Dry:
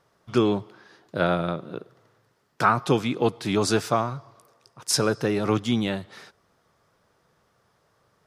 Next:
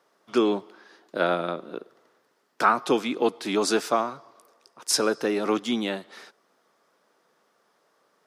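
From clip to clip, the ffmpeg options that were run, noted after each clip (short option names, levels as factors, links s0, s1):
-af "highpass=f=230:w=0.5412,highpass=f=230:w=1.3066"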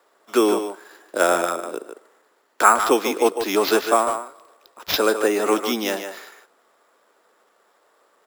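-filter_complex "[0:a]acrossover=split=260 5400:gain=0.0891 1 0.224[s0][s1][s2];[s0][s1][s2]amix=inputs=3:normalize=0,asplit=2[s3][s4];[s4]adelay=150,highpass=300,lowpass=3400,asoftclip=type=hard:threshold=0.178,volume=0.447[s5];[s3][s5]amix=inputs=2:normalize=0,acrusher=samples=5:mix=1:aa=0.000001,volume=2"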